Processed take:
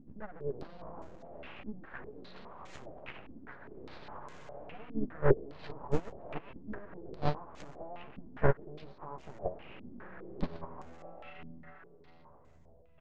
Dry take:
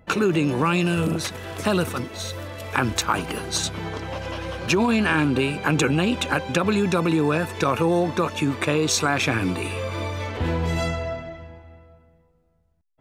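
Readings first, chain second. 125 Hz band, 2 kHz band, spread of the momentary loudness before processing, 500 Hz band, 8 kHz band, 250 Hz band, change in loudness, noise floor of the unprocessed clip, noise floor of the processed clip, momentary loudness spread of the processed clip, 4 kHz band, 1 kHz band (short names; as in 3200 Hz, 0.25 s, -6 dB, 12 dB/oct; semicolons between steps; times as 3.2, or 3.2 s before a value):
-15.0 dB, -21.5 dB, 11 LU, -13.0 dB, under -35 dB, -20.0 dB, -16.5 dB, -62 dBFS, -58 dBFS, 18 LU, -28.5 dB, -17.0 dB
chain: compressor 2.5:1, threshold -29 dBFS, peak gain reduction 9 dB; treble ducked by the level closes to 620 Hz, closed at -25 dBFS; air absorption 76 m; upward compressor, threshold -27 dBFS; tremolo saw up 0.94 Hz, depth 35%; doubler 14 ms -4 dB; echo 0.408 s -7 dB; full-wave rectifier; gate -23 dBFS, range -27 dB; stepped low-pass 4.9 Hz 250–7000 Hz; gain +11 dB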